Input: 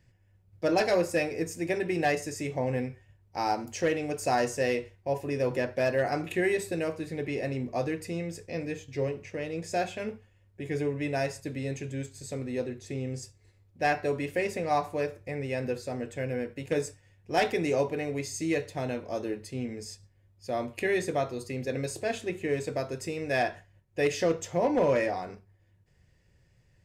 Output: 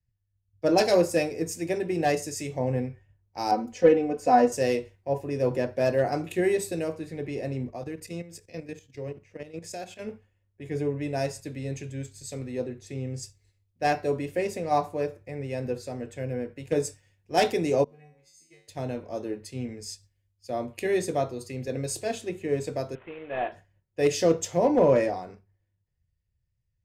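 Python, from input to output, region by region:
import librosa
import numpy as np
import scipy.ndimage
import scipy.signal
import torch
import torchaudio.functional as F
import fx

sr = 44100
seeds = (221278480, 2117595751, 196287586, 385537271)

y = fx.chain(x, sr, fx.lowpass(hz=2100.0, slope=6),
    fx.comb(ms=4.0, depth=0.79), at=(3.51, 4.52))
y = fx.chain(y, sr, fx.high_shelf(hz=9700.0, db=5.5),
    fx.level_steps(step_db=11), at=(7.7, 9.99))
y = fx.chain(y, sr, fx.level_steps(step_db=13),
    fx.comb_fb(f0_hz=50.0, decay_s=0.62, harmonics='odd', damping=0.0, mix_pct=100), at=(17.84, 18.68))
y = fx.chain(y, sr, fx.cvsd(bps=16000),
    fx.peak_eq(hz=120.0, db=-11.5, octaves=2.0), at=(22.95, 23.52))
y = fx.dynamic_eq(y, sr, hz=1900.0, q=0.82, threshold_db=-44.0, ratio=4.0, max_db=-7)
y = fx.band_widen(y, sr, depth_pct=70)
y = F.gain(torch.from_numpy(y), 2.5).numpy()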